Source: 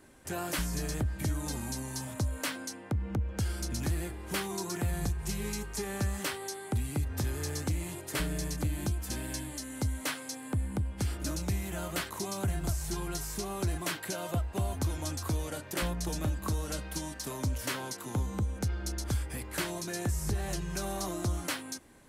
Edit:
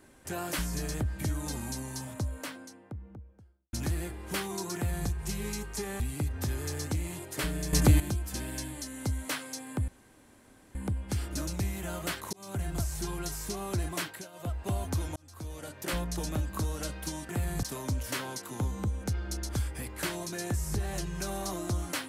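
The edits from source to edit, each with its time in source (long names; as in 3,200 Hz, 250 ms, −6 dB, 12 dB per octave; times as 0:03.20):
0:01.70–0:03.73: fade out and dull
0:04.75–0:05.09: duplicate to 0:17.18
0:06.00–0:06.76: remove
0:08.49–0:08.76: clip gain +11 dB
0:10.64: splice in room tone 0.87 s
0:12.22–0:12.70: fade in equal-power
0:13.91–0:14.49: duck −14.5 dB, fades 0.28 s
0:15.05–0:15.85: fade in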